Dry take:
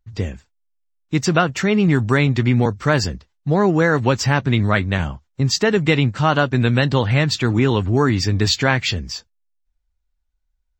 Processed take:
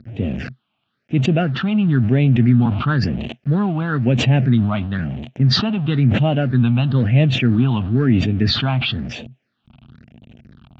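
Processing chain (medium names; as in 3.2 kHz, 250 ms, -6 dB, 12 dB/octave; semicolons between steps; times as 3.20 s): jump at every zero crossing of -27 dBFS; phase shifter stages 6, 1 Hz, lowest notch 460–1400 Hz; in parallel at -9 dB: small samples zeroed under -24.5 dBFS; on the sum: cabinet simulation 120–3100 Hz, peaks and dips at 130 Hz +7 dB, 230 Hz +9 dB, 660 Hz +7 dB, 1 kHz -7 dB, 2.1 kHz -6 dB; decay stretcher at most 42 dB/s; trim -5 dB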